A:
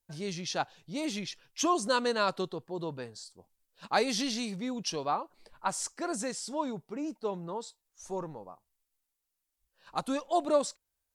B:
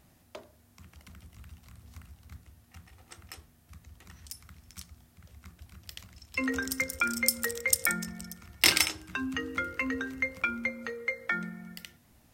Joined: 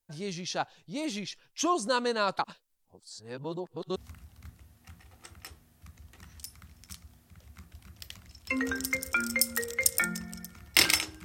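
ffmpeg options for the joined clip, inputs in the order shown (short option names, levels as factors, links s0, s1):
-filter_complex "[0:a]apad=whole_dur=11.24,atrim=end=11.24,asplit=2[s0][s1];[s0]atrim=end=2.392[s2];[s1]atrim=start=2.388:end=3.962,asetpts=PTS-STARTPTS,areverse[s3];[1:a]atrim=start=1.828:end=9.11[s4];[s2][s3]acrossfade=d=0.004:c1=hsin:c2=hsin[s5];[s5][s4]acrossfade=d=0.004:c1=hsin:c2=hsin"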